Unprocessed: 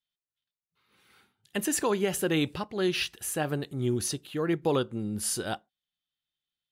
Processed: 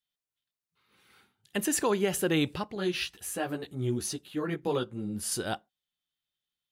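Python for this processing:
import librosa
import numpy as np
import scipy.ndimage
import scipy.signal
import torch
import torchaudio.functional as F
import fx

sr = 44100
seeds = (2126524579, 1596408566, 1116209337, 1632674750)

y = fx.chorus_voices(x, sr, voices=6, hz=1.2, base_ms=13, depth_ms=3.6, mix_pct=45, at=(2.75, 5.32))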